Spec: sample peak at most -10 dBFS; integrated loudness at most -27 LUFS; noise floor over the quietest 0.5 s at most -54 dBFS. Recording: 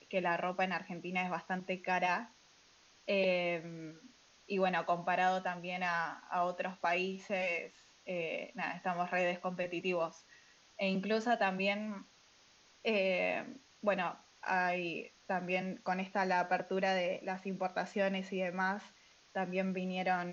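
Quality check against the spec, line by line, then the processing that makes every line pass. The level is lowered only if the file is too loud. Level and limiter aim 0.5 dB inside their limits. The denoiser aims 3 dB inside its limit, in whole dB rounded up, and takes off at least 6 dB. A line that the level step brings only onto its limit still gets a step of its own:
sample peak -18.5 dBFS: pass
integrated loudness -35.5 LUFS: pass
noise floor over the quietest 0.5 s -65 dBFS: pass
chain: none needed

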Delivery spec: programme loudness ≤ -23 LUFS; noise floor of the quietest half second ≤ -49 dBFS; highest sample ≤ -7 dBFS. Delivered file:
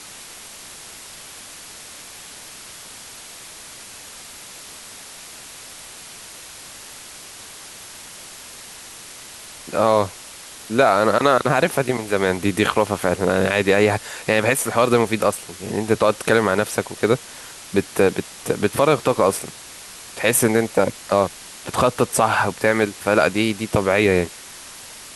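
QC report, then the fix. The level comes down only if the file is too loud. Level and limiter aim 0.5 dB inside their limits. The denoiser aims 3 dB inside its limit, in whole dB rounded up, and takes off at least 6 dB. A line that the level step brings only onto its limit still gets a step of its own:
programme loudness -19.5 LUFS: fail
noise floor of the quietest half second -39 dBFS: fail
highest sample -3.5 dBFS: fail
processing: noise reduction 9 dB, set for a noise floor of -39 dBFS; trim -4 dB

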